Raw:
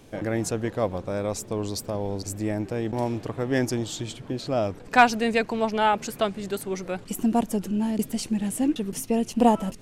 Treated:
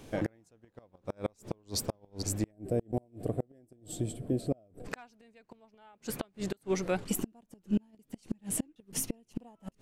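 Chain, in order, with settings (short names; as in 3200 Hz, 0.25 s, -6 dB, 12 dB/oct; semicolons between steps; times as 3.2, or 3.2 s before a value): spectral gain 2.51–4.85, 760–7500 Hz -15 dB; flipped gate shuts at -19 dBFS, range -36 dB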